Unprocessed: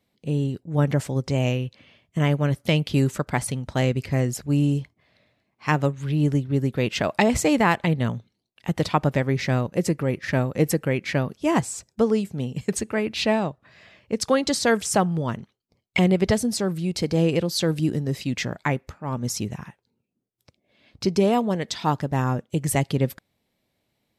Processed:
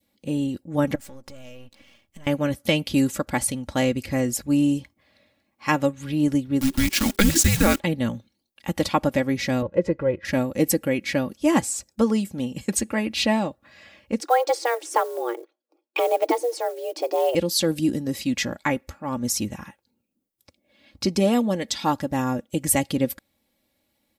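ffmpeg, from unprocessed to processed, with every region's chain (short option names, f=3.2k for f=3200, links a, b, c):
-filter_complex "[0:a]asettb=1/sr,asplit=3[a][b][c];[a]atrim=end=0.954[d];[b]atrim=start=0.95:end=2.27,asetpts=PTS-STARTPTS,afade=t=in:d=0.004:c=qsin,afade=t=out:st=1.316:d=0.004:c=qsin,aeval=exprs='if(lt(val(0),0),0.251*val(0),val(0))':c=same,acompressor=threshold=-39dB:ratio=8:attack=3.2:release=140:knee=1:detection=peak[e];[c]atrim=start=2.266[f];[d][e]acrossfade=d=0.004:c1=hsin:c2=qsin[g];[g][f]acrossfade=d=0.004:c1=qsin:c2=hsin,asettb=1/sr,asplit=3[h][i][j];[h]atrim=end=6.614[k];[i]atrim=start=6.61:end=7.8,asetpts=PTS-STARTPTS,afade=t=in:d=0.004:c=qsin,afade=t=out:st=1.186:d=0.004:c=qsin,acrusher=bits=6:dc=4:mix=0:aa=0.000001,afreqshift=-400,equalizer=f=5.6k:t=o:w=2.4:g=5[l];[j]atrim=start=7.796[m];[k][l]acrossfade=d=0.004:c1=hsin:c2=qsin[n];[n][m]acrossfade=d=0.004:c1=qsin:c2=hsin,asettb=1/sr,asplit=3[o][p][q];[o]atrim=end=9.624[r];[p]atrim=start=9.62:end=10.25,asetpts=PTS-STARTPTS,afade=t=in:d=0.004:c=qsin,afade=t=out:st=0.626:d=0.004:c=qsin,lowpass=1.8k,aecho=1:1:2:0.65,atrim=end_sample=27783[s];[q]atrim=start=10.246[t];[r][s]acrossfade=d=0.004:c1=hsin:c2=qsin[u];[u][t]acrossfade=d=0.004:c1=qsin:c2=hsin,asettb=1/sr,asplit=3[v][w][x];[v]atrim=end=14.204[y];[w]atrim=start=14.2:end=17.35,asetpts=PTS-STARTPTS,afade=t=in:d=0.004:c=qsin,afade=t=out:st=3.146:d=0.004:c=qsin,lowpass=f=1.4k:p=1,acrusher=bits=8:mode=log:mix=0:aa=0.000001,afreqshift=240[z];[x]atrim=start=17.346[aa];[y][z]acrossfade=d=0.004:c1=hsin:c2=qsin[ab];[ab][aa]acrossfade=d=0.004:c1=qsin:c2=hsin,highshelf=f=9.6k:g=10.5,aecho=1:1:3.6:0.62,adynamicequalizer=threshold=0.0141:dfrequency=1200:dqfactor=0.97:tfrequency=1200:tqfactor=0.97:attack=5:release=100:ratio=0.375:range=2.5:mode=cutabove:tftype=bell"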